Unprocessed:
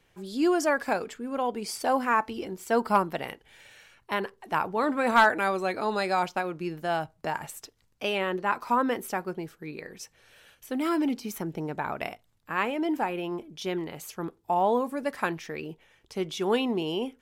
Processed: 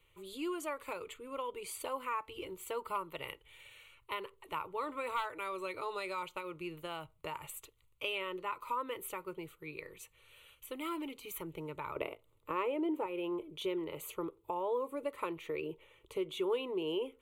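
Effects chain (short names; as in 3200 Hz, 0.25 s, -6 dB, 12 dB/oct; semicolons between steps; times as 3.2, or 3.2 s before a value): bell 420 Hz -6 dB 2.4 oct, from 11.96 s +11 dB, from 13.06 s +4.5 dB; compressor 2.5:1, threshold -34 dBFS, peak gain reduction 12.5 dB; fixed phaser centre 1100 Hz, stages 8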